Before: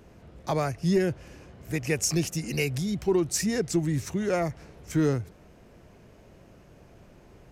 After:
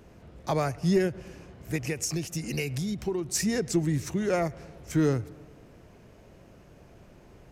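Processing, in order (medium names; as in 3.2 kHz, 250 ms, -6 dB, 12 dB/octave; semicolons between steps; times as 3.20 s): 1.81–3.35 s: compression, threshold -27 dBFS, peak gain reduction 7.5 dB; filtered feedback delay 108 ms, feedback 66%, low-pass 2.9 kHz, level -22 dB; endings held to a fixed fall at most 240 dB/s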